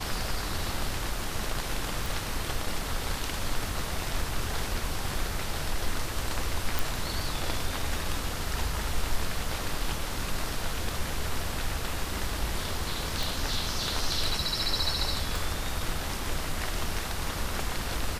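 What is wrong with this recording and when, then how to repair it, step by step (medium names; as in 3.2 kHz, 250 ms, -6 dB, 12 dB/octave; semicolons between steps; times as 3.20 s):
2.06 s: pop
6.79 s: pop
13.23 s: pop
15.36 s: pop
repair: de-click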